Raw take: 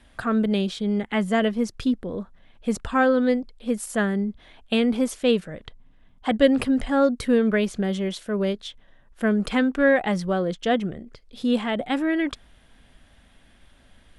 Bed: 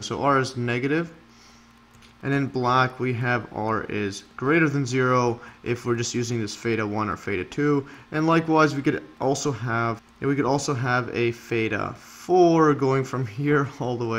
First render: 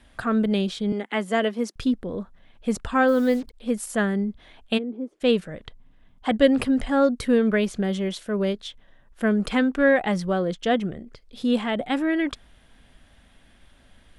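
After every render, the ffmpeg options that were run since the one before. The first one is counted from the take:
-filter_complex "[0:a]asettb=1/sr,asplit=3[s0][s1][s2];[s0]atrim=end=0.924[s3];[s1]atrim=start=0.92:end=1.76,asetpts=PTS-STARTPTS,afade=t=in:d=0.004:c=qsin,afade=t=out:st=0.836:d=0.004:c=qsin,highpass=f=240:w=0.5412,highpass=f=240:w=1.3066[s4];[s2]atrim=start=1.756[s5];[s3][s4]acrossfade=d=0.004:c1=hsin:c2=qsin[s6];[s6][s5]acrossfade=d=0.004:c1=qsin:c2=hsin,asplit=3[s7][s8][s9];[s7]afade=t=out:st=3.07:d=0.02[s10];[s8]acrusher=bits=6:mix=0:aa=0.5,afade=t=in:st=3.07:d=0.02,afade=t=out:st=3.53:d=0.02[s11];[s9]afade=t=in:st=3.53:d=0.02[s12];[s10][s11][s12]amix=inputs=3:normalize=0,asplit=3[s13][s14][s15];[s13]afade=t=out:st=4.77:d=0.02[s16];[s14]bandpass=f=340:t=q:w=4.2,afade=t=in:st=4.77:d=0.02,afade=t=out:st=5.2:d=0.02[s17];[s15]afade=t=in:st=5.2:d=0.02[s18];[s16][s17][s18]amix=inputs=3:normalize=0"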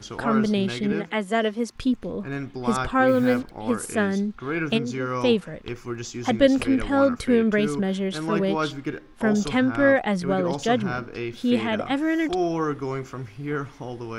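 -filter_complex "[1:a]volume=0.422[s0];[0:a][s0]amix=inputs=2:normalize=0"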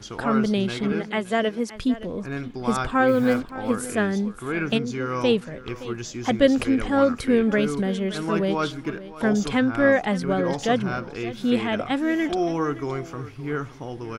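-af "aecho=1:1:569:0.158"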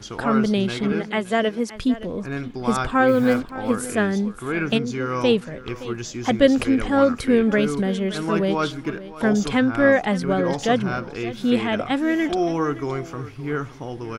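-af "volume=1.26"

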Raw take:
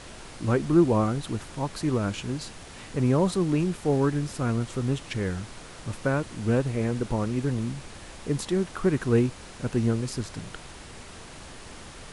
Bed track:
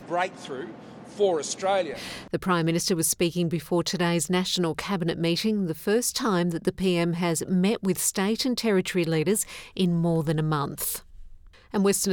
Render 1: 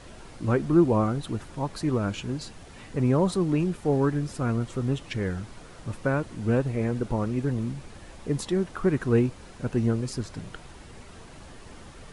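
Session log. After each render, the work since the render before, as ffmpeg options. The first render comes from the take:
-af "afftdn=nr=7:nf=-44"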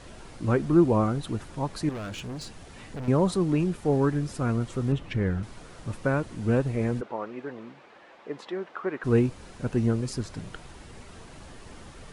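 -filter_complex "[0:a]asettb=1/sr,asplit=3[s0][s1][s2];[s0]atrim=end=1.894[s3];[s1]atrim=start=1.89:end=3.08,asetpts=PTS-STARTPTS,afade=t=in:d=0.004:c=qsin,afade=t=out:st=1.186:d=0.004:c=qsin,volume=44.7,asoftclip=hard,volume=0.0224[s4];[s2]atrim=start=3.076[s5];[s3][s4]acrossfade=d=0.004:c1=hsin:c2=qsin[s6];[s6][s5]acrossfade=d=0.004:c1=qsin:c2=hsin,asettb=1/sr,asplit=3[s7][s8][s9];[s7]atrim=end=4.924[s10];[s8]atrim=start=4.92:end=5.43,asetpts=PTS-STARTPTS,afade=t=in:d=0.004:c=qsin,afade=t=out:st=0.506:d=0.004:c=qsin,bass=f=250:g=4,treble=f=4000:g=-11[s11];[s9]atrim=start=5.426[s12];[s10][s11]acrossfade=d=0.004:c1=hsin:c2=qsin[s13];[s13][s12]acrossfade=d=0.004:c1=qsin:c2=hsin,asplit=3[s14][s15][s16];[s14]afade=t=out:st=7:d=0.02[s17];[s15]highpass=480,lowpass=2600,afade=t=in:st=7:d=0.02,afade=t=out:st=9.03:d=0.02[s18];[s16]afade=t=in:st=9.03:d=0.02[s19];[s17][s18][s19]amix=inputs=3:normalize=0"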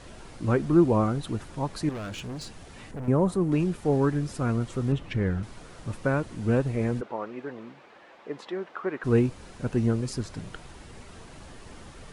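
-filter_complex "[0:a]asettb=1/sr,asplit=3[s0][s1][s2];[s0]atrim=end=2.914[s3];[s1]atrim=start=2.91:end=3.52,asetpts=PTS-STARTPTS,afade=t=in:d=0.004:c=qsin,afade=t=out:st=0.606:d=0.004:c=qsin,equalizer=f=4400:t=o:w=1.8:g=-11[s4];[s2]atrim=start=3.516[s5];[s3][s4]acrossfade=d=0.004:c1=hsin:c2=qsin[s6];[s6][s5]acrossfade=d=0.004:c1=qsin:c2=hsin"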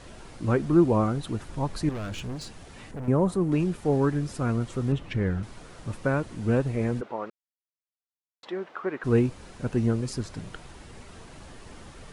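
-filter_complex "[0:a]asettb=1/sr,asplit=3[s0][s1][s2];[s0]atrim=end=1.494[s3];[s1]atrim=start=1.49:end=2.36,asetpts=PTS-STARTPTS,afade=t=in:d=0.004:c=qsin,afade=t=out:st=0.866:d=0.004:c=qsin,lowshelf=f=81:g=9.5[s4];[s2]atrim=start=2.356[s5];[s3][s4]acrossfade=d=0.004:c1=hsin:c2=qsin[s6];[s6][s5]acrossfade=d=0.004:c1=qsin:c2=hsin,asplit=3[s7][s8][s9];[s7]atrim=end=7.3,asetpts=PTS-STARTPTS,afade=t=out:st=7.296:d=0.004:c=hsin[s10];[s8]atrim=start=7.3:end=8.43,asetpts=PTS-STARTPTS,volume=0[s11];[s9]atrim=start=8.43,asetpts=PTS-STARTPTS,afade=t=in:d=0.004:c=hsin[s12];[s10][s11][s12]concat=n=3:v=0:a=1"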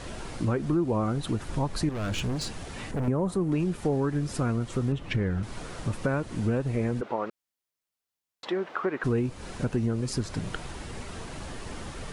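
-filter_complex "[0:a]asplit=2[s0][s1];[s1]alimiter=limit=0.15:level=0:latency=1:release=98,volume=1.26[s2];[s0][s2]amix=inputs=2:normalize=0,acompressor=threshold=0.0501:ratio=3"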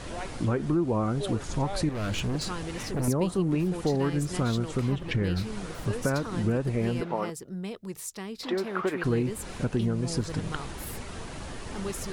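-filter_complex "[1:a]volume=0.224[s0];[0:a][s0]amix=inputs=2:normalize=0"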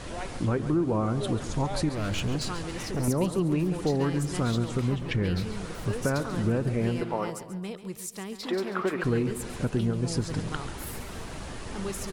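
-af "aecho=1:1:138|276|414|552|690:0.237|0.119|0.0593|0.0296|0.0148"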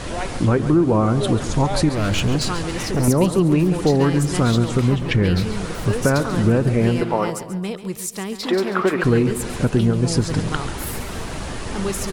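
-af "volume=2.99"

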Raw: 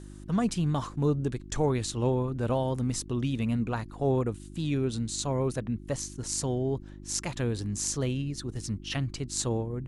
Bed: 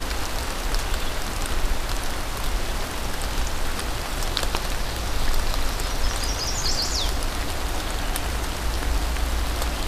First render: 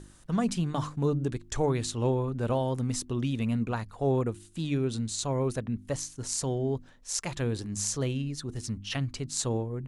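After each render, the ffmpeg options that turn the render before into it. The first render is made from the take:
-af "bandreject=f=50:t=h:w=4,bandreject=f=100:t=h:w=4,bandreject=f=150:t=h:w=4,bandreject=f=200:t=h:w=4,bandreject=f=250:t=h:w=4,bandreject=f=300:t=h:w=4,bandreject=f=350:t=h:w=4"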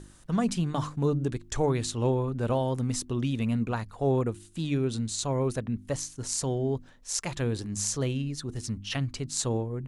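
-af "volume=1.12"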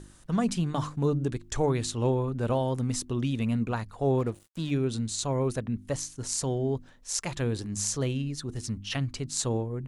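-filter_complex "[0:a]asettb=1/sr,asplit=3[s0][s1][s2];[s0]atrim=end=4.194[s3];[s1]atrim=start=4.19:end=4.71,asetpts=PTS-STARTPTS,afade=t=in:d=0.004:c=qsin,afade=t=out:st=0.516:d=0.004:c=qsin,aeval=exprs='sgn(val(0))*max(abs(val(0))-0.00398,0)':c=same[s4];[s2]atrim=start=4.706[s5];[s3][s4]acrossfade=d=0.004:c1=hsin:c2=qsin[s6];[s6][s5]acrossfade=d=0.004:c1=qsin:c2=hsin"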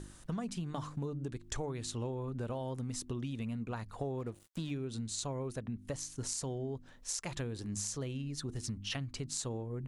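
-af "acompressor=threshold=0.0178:ratio=10"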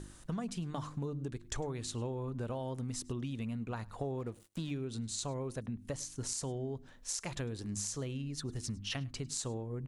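-af "aecho=1:1:103:0.0668"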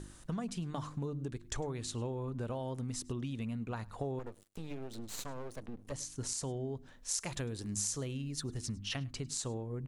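-filter_complex "[0:a]asettb=1/sr,asplit=3[s0][s1][s2];[s0]atrim=end=4.194[s3];[s1]atrim=start=4.19:end=5.92,asetpts=PTS-STARTPTS,afade=t=in:d=0.004:c=qsin,afade=t=out:st=1.726:d=0.004:c=qsin,aeval=exprs='max(val(0),0)':c=same[s4];[s2]atrim=start=5.916[s5];[s3][s4]acrossfade=d=0.004:c1=hsin:c2=qsin[s6];[s6][s5]acrossfade=d=0.004:c1=qsin:c2=hsin,asettb=1/sr,asplit=3[s7][s8][s9];[s7]atrim=end=7.114[s10];[s8]atrim=start=7.11:end=8.49,asetpts=PTS-STARTPTS,afade=t=in:d=0.004:c=qsin,afade=t=out:st=1.376:d=0.004:c=qsin,highshelf=f=7700:g=7.5[s11];[s9]atrim=start=8.486[s12];[s10][s11]acrossfade=d=0.004:c1=hsin:c2=qsin[s13];[s13][s12]acrossfade=d=0.004:c1=qsin:c2=hsin"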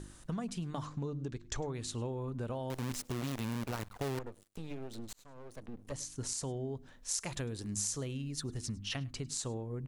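-filter_complex "[0:a]asettb=1/sr,asplit=3[s0][s1][s2];[s0]atrim=end=0.854[s3];[s1]atrim=start=0.85:end=1.74,asetpts=PTS-STARTPTS,afade=t=in:d=0.004:c=qsin,afade=t=out:st=0.886:d=0.004:c=qsin,highshelf=f=8000:t=q:w=1.5:g=-8[s4];[s2]atrim=start=1.736[s5];[s3][s4]acrossfade=d=0.004:c1=hsin:c2=qsin[s6];[s6][s5]acrossfade=d=0.004:c1=qsin:c2=hsin,asettb=1/sr,asplit=3[s7][s8][s9];[s7]atrim=end=2.704[s10];[s8]atrim=start=2.7:end=4.19,asetpts=PTS-STARTPTS,afade=t=in:d=0.004:c=qsin,afade=t=out:st=1.486:d=0.004:c=qsin,acrusher=bits=7:dc=4:mix=0:aa=0.000001[s11];[s9]atrim=start=4.186[s12];[s10][s11]acrossfade=d=0.004:c1=hsin:c2=qsin[s13];[s13][s12]acrossfade=d=0.004:c1=qsin:c2=hsin,asplit=2[s14][s15];[s14]atrim=end=5.13,asetpts=PTS-STARTPTS,afade=t=out:st=5.126:d=0.004:c=hsin[s16];[s15]atrim=start=5.13,asetpts=PTS-STARTPTS,afade=t=in:d=0.65[s17];[s16][s17]concat=n=2:v=0:a=1"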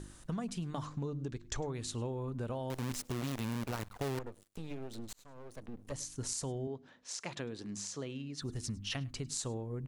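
-filter_complex "[0:a]asettb=1/sr,asplit=3[s0][s1][s2];[s0]atrim=end=6.674[s3];[s1]atrim=start=6.67:end=8.42,asetpts=PTS-STARTPTS,afade=t=in:d=0.004:c=qsin,afade=t=out:st=1.746:d=0.004:c=qsin,highpass=180,lowpass=4900[s4];[s2]atrim=start=8.416[s5];[s3][s4]acrossfade=d=0.004:c1=hsin:c2=qsin[s6];[s6][s5]acrossfade=d=0.004:c1=qsin:c2=hsin"

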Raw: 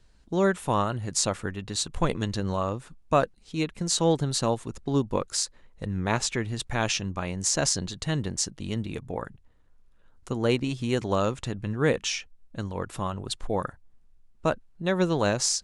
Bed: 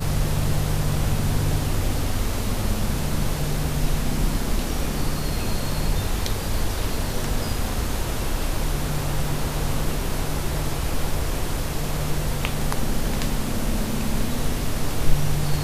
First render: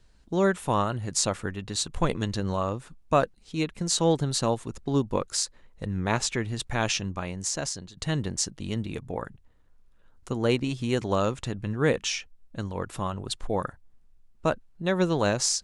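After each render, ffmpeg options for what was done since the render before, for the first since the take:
-filter_complex "[0:a]asplit=2[s0][s1];[s0]atrim=end=7.97,asetpts=PTS-STARTPTS,afade=t=out:st=7.03:d=0.94:silence=0.199526[s2];[s1]atrim=start=7.97,asetpts=PTS-STARTPTS,afade=t=in:d=0.004:c=hsin:silence=0.199526[s3];[s2][s3]concat=n=2:v=0:a=1"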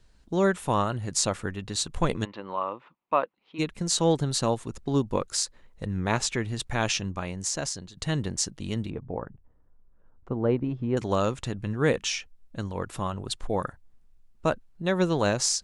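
-filter_complex "[0:a]asplit=3[s0][s1][s2];[s0]afade=t=out:st=2.24:d=0.02[s3];[s1]highpass=420,equalizer=f=430:t=q:w=4:g=-5,equalizer=f=690:t=q:w=4:g=-4,equalizer=f=1000:t=q:w=4:g=5,equalizer=f=1600:t=q:w=4:g=-7,lowpass=f=2800:w=0.5412,lowpass=f=2800:w=1.3066,afade=t=in:st=2.24:d=0.02,afade=t=out:st=3.58:d=0.02[s4];[s2]afade=t=in:st=3.58:d=0.02[s5];[s3][s4][s5]amix=inputs=3:normalize=0,asettb=1/sr,asplit=3[s6][s7][s8];[s6]atrim=end=8.904[s9];[s7]atrim=start=8.9:end=10.97,asetpts=PTS-STARTPTS,afade=t=in:d=0.004:c=qsin,afade=t=out:st=2.066:d=0.004:c=qsin,lowpass=1100[s10];[s8]atrim=start=10.966[s11];[s9][s10]acrossfade=d=0.004:c1=hsin:c2=qsin[s12];[s12][s11]acrossfade=d=0.004:c1=qsin:c2=hsin"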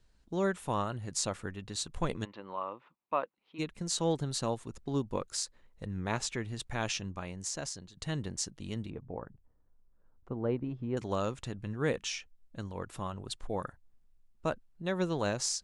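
-af "volume=0.422"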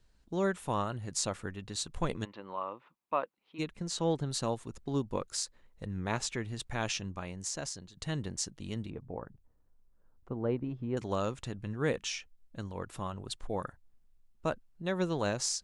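-filter_complex "[0:a]asettb=1/sr,asplit=3[s0][s1][s2];[s0]atrim=end=3.754[s3];[s1]atrim=start=3.75:end=4.3,asetpts=PTS-STARTPTS,afade=t=in:d=0.004:c=qsin,afade=t=out:st=0.546:d=0.004:c=qsin,highshelf=f=6300:g=-9.5[s4];[s2]atrim=start=4.296[s5];[s3][s4]acrossfade=d=0.004:c1=hsin:c2=qsin[s6];[s6][s5]acrossfade=d=0.004:c1=qsin:c2=hsin"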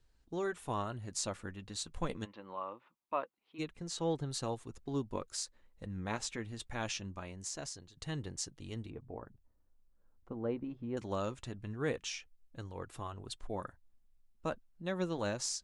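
-af "flanger=delay=2.4:depth=1.4:regen=-63:speed=0.24:shape=sinusoidal"

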